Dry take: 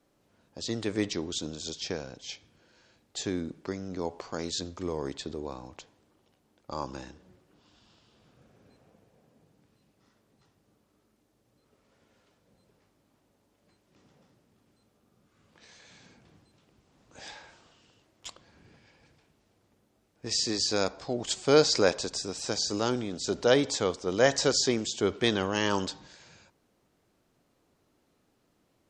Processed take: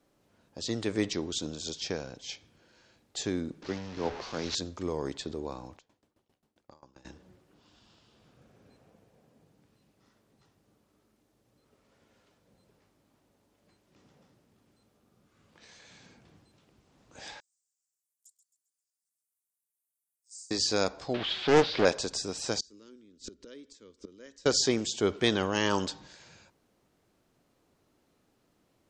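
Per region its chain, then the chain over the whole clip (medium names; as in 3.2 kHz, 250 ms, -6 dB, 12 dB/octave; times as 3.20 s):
3.62–4.55 s: one-bit delta coder 32 kbps, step -33.5 dBFS + three bands expanded up and down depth 100%
5.76–7.05 s: compression 2.5:1, threshold -53 dBFS + sawtooth tremolo in dB decaying 7.5 Hz, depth 21 dB
17.40–20.51 s: inverse Chebyshev high-pass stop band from 1.8 kHz, stop band 80 dB + feedback delay 133 ms, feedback 42%, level -11 dB
21.14–21.85 s: zero-crossing glitches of -15 dBFS + elliptic low-pass 3.6 kHz, stop band 80 dB + loudspeaker Doppler distortion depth 0.52 ms
22.60–24.46 s: bass shelf 280 Hz +9.5 dB + inverted gate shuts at -22 dBFS, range -26 dB + static phaser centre 310 Hz, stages 4
whole clip: none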